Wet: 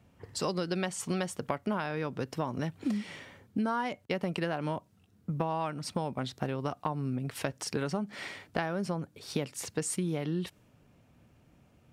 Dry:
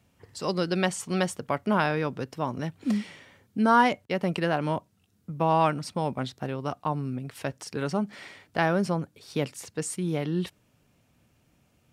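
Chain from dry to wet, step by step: compression 12:1, threshold -32 dBFS, peak gain reduction 17.5 dB; tape noise reduction on one side only decoder only; trim +4 dB

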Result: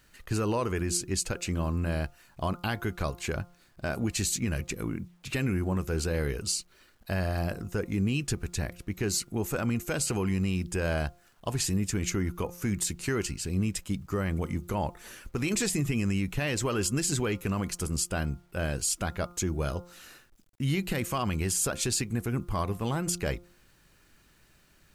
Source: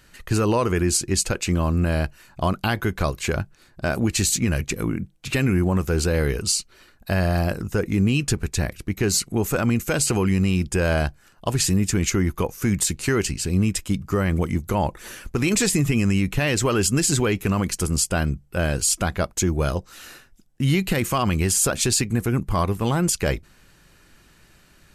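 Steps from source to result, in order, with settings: de-hum 175.3 Hz, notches 8; bit crusher 10-bit; trim -8 dB

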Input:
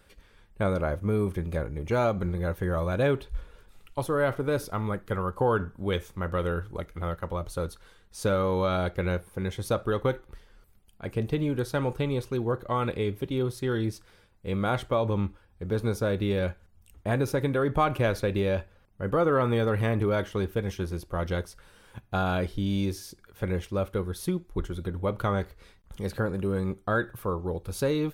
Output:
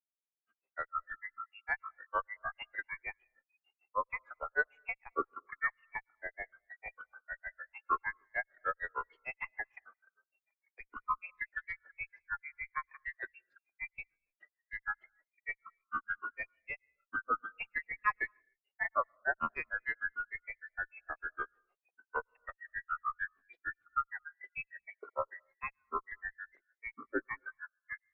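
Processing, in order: every band turned upside down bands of 2 kHz; high-pass 220 Hz 12 dB/octave; granulator 102 ms, grains 6.6 per s, spray 441 ms, pitch spread up and down by 7 st; in parallel at -11.5 dB: Schmitt trigger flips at -22.5 dBFS; on the sum: tape spacing loss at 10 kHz 32 dB; on a send at -23 dB: reverberation, pre-delay 103 ms; on the sum: spectral contrast expander 1.5:1

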